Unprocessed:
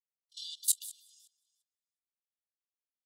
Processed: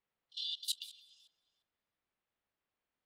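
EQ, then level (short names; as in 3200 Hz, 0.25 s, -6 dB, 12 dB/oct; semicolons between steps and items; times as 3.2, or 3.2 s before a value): air absorption 380 m; +14.5 dB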